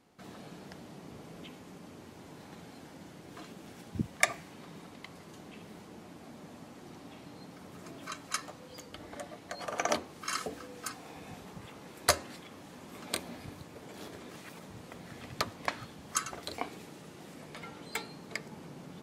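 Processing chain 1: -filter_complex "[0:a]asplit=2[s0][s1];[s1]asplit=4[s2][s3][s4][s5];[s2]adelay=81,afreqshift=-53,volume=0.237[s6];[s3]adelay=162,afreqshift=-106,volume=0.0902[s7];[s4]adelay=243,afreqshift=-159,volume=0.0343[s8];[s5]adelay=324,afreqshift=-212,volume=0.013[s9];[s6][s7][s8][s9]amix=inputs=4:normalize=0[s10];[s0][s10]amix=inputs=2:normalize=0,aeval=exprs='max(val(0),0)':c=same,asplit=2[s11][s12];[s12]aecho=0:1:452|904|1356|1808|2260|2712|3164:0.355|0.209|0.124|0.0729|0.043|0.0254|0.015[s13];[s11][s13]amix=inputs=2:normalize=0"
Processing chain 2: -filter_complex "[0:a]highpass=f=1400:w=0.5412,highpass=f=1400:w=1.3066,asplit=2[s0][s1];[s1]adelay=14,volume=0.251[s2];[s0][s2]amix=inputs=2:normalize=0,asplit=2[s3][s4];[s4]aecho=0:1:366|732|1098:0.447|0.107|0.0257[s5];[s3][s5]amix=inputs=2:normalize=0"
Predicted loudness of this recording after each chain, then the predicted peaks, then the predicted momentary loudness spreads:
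-43.0 LUFS, -38.5 LUFS; -5.0 dBFS, -7.0 dBFS; 17 LU, 21 LU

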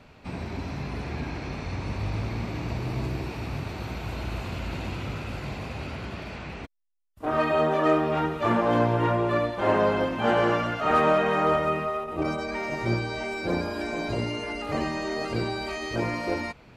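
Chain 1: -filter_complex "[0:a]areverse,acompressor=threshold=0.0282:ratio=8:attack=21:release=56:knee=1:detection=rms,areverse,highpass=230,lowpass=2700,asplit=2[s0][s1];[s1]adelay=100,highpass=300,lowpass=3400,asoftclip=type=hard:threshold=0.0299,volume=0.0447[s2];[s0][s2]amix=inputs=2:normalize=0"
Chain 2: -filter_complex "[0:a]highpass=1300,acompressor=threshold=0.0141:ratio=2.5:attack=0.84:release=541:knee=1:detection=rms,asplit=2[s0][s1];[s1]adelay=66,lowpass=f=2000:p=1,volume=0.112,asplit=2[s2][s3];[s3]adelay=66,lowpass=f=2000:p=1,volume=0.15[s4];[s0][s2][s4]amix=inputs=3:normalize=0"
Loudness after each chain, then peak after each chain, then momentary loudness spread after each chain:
-35.0 LUFS, -41.0 LUFS; -21.5 dBFS, -27.5 dBFS; 7 LU, 5 LU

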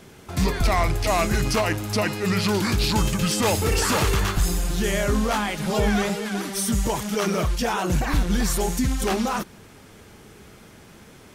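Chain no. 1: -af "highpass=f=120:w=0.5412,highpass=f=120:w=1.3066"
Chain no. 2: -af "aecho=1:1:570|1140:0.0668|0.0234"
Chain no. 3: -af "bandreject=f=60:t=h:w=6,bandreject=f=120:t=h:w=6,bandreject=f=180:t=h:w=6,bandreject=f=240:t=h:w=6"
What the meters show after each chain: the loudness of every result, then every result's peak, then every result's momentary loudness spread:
-24.0 LUFS, -23.0 LUFS, -23.5 LUFS; -9.0 dBFS, -13.0 dBFS, -11.0 dBFS; 5 LU, 4 LU, 4 LU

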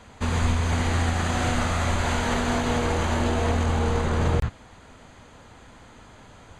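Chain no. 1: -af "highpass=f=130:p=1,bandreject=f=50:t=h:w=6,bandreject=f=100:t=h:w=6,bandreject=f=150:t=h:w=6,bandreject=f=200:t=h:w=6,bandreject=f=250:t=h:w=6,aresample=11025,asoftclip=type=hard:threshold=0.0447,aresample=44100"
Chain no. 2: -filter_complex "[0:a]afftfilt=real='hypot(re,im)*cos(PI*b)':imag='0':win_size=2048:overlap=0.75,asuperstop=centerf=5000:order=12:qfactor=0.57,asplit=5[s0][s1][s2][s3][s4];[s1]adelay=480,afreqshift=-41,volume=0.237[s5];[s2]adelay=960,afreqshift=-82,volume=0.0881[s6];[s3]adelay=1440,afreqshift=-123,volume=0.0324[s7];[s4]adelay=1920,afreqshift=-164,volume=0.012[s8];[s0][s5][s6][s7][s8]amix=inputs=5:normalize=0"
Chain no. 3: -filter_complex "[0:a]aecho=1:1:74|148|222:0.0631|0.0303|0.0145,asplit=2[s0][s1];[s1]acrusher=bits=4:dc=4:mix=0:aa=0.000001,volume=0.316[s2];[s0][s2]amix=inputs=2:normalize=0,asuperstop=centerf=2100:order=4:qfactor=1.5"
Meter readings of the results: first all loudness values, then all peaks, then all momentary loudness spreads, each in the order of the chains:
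-30.0 LUFS, -27.0 LUFS, -23.0 LUFS; -24.0 dBFS, -10.5 dBFS, -9.0 dBFS; 21 LU, 9 LU, 2 LU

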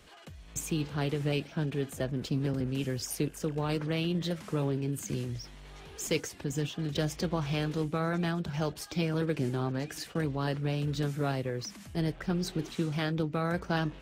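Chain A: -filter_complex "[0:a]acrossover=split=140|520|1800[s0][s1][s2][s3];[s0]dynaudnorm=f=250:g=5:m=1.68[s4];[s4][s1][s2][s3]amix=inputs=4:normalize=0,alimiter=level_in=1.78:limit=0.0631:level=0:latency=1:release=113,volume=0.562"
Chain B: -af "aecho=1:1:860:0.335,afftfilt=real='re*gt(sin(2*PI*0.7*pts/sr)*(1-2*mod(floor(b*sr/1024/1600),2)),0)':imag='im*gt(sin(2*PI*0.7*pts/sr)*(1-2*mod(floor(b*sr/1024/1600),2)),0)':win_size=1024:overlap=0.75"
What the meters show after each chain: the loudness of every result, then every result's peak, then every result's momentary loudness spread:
-37.5 LUFS, -35.5 LUFS; -29.0 dBFS, -17.5 dBFS; 4 LU, 15 LU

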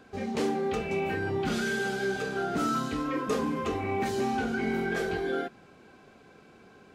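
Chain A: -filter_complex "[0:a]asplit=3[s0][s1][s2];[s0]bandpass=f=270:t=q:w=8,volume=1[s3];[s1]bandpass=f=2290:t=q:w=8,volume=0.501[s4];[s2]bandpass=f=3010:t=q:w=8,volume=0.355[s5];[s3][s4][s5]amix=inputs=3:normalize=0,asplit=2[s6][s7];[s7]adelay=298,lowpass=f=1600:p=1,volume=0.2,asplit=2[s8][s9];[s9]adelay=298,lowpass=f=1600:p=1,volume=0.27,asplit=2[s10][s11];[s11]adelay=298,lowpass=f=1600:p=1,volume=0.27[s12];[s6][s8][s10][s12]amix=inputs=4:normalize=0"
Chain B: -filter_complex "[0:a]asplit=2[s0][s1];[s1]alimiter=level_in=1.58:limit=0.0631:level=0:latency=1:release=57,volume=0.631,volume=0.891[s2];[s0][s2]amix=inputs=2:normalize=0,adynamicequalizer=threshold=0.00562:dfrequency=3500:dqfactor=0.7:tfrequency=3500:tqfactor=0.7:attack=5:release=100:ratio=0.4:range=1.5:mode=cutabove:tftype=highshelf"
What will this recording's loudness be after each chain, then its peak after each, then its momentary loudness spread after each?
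-41.0 LUFS, -27.0 LUFS; -28.0 dBFS, -16.5 dBFS; 7 LU, 2 LU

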